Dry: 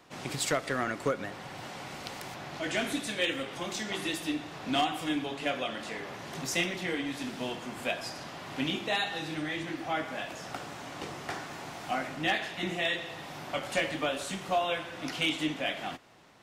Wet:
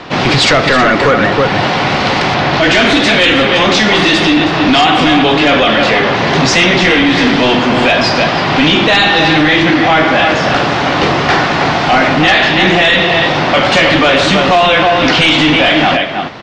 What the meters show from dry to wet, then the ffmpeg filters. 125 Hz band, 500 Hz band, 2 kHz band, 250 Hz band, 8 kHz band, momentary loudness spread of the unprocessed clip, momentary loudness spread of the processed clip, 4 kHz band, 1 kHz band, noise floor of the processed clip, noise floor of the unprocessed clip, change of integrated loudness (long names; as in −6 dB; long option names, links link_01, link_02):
+26.0 dB, +23.5 dB, +25.0 dB, +24.0 dB, +15.5 dB, 11 LU, 4 LU, +24.5 dB, +24.5 dB, −14 dBFS, −44 dBFS, +24.0 dB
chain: -filter_complex "[0:a]lowpass=frequency=4800:width=0.5412,lowpass=frequency=4800:width=1.3066,asplit=2[link_01][link_02];[link_02]adelay=320.7,volume=-9dB,highshelf=frequency=4000:gain=-7.22[link_03];[link_01][link_03]amix=inputs=2:normalize=0,apsyclip=34dB,volume=-4.5dB"